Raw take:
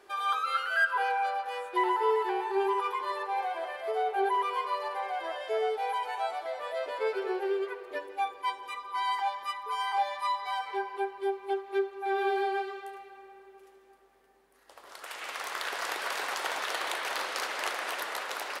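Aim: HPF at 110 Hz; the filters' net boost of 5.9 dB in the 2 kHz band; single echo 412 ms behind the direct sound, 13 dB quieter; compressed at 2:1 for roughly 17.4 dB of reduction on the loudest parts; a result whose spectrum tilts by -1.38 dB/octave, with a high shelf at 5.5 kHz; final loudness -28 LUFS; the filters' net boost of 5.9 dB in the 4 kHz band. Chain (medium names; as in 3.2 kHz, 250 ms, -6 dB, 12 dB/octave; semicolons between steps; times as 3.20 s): high-pass 110 Hz; peaking EQ 2 kHz +7 dB; peaking EQ 4 kHz +7 dB; treble shelf 5.5 kHz -5.5 dB; compression 2:1, threshold -50 dBFS; delay 412 ms -13 dB; trim +13.5 dB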